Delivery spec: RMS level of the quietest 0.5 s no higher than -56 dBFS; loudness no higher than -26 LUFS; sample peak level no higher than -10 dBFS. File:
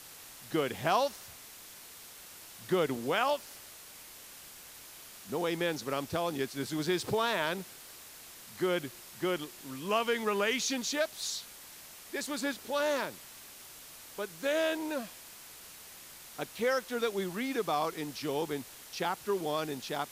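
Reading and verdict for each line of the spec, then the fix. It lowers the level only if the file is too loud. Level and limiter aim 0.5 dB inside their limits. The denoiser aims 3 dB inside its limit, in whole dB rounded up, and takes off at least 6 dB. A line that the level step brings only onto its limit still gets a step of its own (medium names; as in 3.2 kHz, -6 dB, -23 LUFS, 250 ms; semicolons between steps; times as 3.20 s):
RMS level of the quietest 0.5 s -51 dBFS: fail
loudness -33.0 LUFS: pass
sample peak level -14.5 dBFS: pass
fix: noise reduction 8 dB, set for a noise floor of -51 dBFS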